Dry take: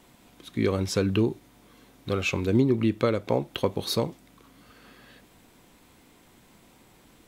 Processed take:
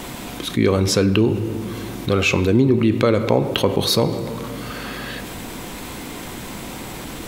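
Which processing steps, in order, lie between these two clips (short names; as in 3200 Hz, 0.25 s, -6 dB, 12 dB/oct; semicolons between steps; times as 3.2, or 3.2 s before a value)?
reverb RT60 1.5 s, pre-delay 10 ms, DRR 13.5 dB; fast leveller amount 50%; gain +5 dB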